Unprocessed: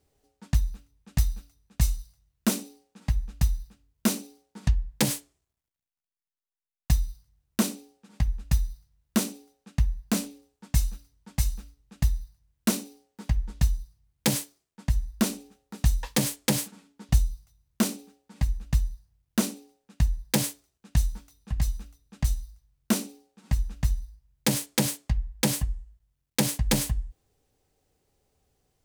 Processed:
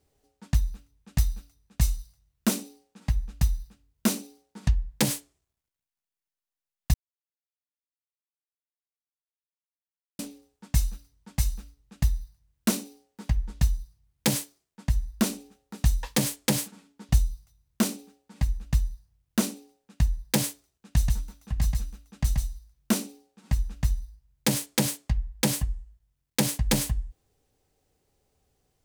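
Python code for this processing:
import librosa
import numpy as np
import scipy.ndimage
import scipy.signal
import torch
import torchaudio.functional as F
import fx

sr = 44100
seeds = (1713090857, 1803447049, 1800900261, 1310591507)

y = fx.echo_single(x, sr, ms=132, db=-3.5, at=(20.97, 22.98), fade=0.02)
y = fx.edit(y, sr, fx.silence(start_s=6.94, length_s=3.25), tone=tone)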